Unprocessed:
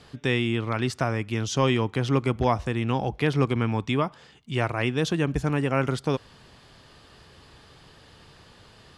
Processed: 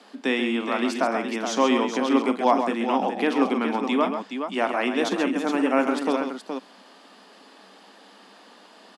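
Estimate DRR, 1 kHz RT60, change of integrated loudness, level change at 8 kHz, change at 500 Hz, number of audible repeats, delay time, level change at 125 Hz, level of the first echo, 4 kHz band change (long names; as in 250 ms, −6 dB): no reverb audible, no reverb audible, +2.0 dB, +1.0 dB, +3.0 dB, 3, 43 ms, below −20 dB, −11.5 dB, +1.5 dB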